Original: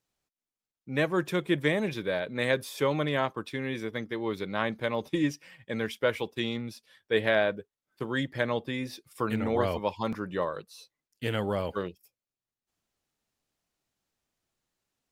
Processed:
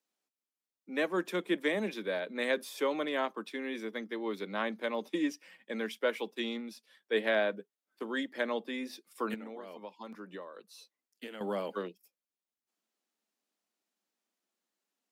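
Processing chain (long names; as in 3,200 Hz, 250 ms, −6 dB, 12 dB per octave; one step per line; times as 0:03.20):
Butterworth high-pass 190 Hz 72 dB per octave
0:09.34–0:11.41: downward compressor 16 to 1, threshold −37 dBFS, peak gain reduction 16 dB
level −4 dB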